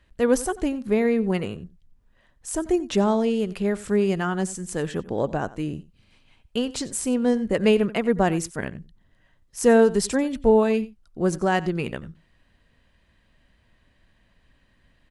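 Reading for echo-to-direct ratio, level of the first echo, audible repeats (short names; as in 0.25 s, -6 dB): -18.5 dB, -18.5 dB, 1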